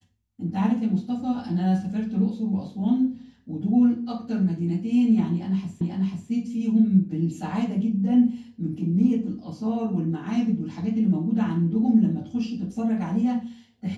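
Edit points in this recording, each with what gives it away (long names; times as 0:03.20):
0:05.81: the same again, the last 0.49 s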